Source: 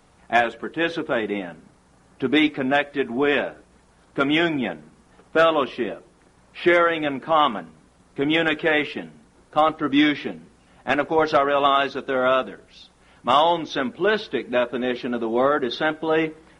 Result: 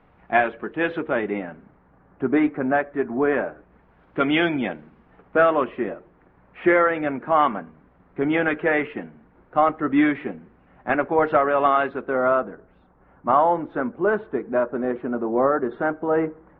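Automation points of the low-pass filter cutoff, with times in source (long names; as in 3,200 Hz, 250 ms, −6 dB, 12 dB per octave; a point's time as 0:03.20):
low-pass filter 24 dB per octave
0:01.16 2,500 Hz
0:02.24 1,700 Hz
0:03.36 1,700 Hz
0:04.47 3,400 Hz
0:05.43 2,100 Hz
0:11.89 2,100 Hz
0:12.48 1,500 Hz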